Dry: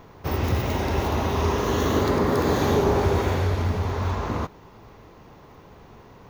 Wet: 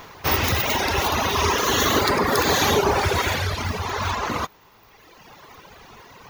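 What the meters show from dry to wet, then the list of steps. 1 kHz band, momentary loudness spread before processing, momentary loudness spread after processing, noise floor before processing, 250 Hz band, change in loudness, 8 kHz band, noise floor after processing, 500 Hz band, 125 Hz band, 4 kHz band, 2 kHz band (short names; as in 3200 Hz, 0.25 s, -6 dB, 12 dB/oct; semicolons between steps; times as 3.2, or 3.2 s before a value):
+5.0 dB, 7 LU, 8 LU, -49 dBFS, -2.0 dB, +3.0 dB, +12.0 dB, -53 dBFS, 0.0 dB, -3.5 dB, +11.5 dB, +9.0 dB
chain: reverb removal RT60 1.8 s; tilt shelf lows -8 dB, about 830 Hz; gain +7.5 dB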